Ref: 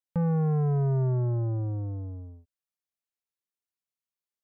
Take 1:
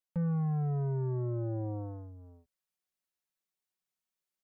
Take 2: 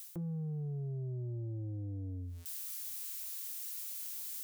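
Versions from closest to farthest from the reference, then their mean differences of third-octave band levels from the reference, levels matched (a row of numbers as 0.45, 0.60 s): 1, 2; 1.5, 4.5 dB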